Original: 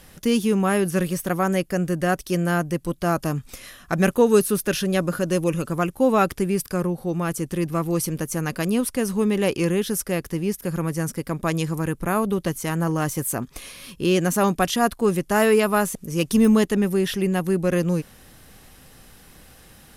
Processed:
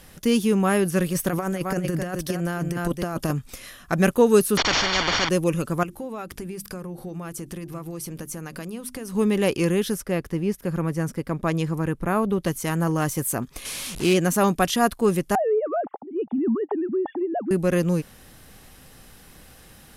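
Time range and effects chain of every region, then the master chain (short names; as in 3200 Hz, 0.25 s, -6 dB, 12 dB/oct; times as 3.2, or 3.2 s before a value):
1.12–3.31 echo 0.261 s -10.5 dB + negative-ratio compressor -24 dBFS, ratio -0.5
4.57–5.29 delta modulation 32 kbps, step -25 dBFS + polynomial smoothing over 41 samples + spectral compressor 10:1
5.83–9.15 compressor 8:1, threshold -29 dBFS + notches 50/100/150/200/250/300/350 Hz
9.94–12.43 short-mantissa float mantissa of 8-bit + high shelf 4000 Hz -10 dB
13.65–14.14 delta modulation 64 kbps, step -29.5 dBFS + high shelf 4000 Hz +7 dB + Doppler distortion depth 0.12 ms
15.35–17.51 sine-wave speech + synth low-pass 820 Hz, resonance Q 7.2 + compressor 3:1, threshold -23 dBFS
whole clip: dry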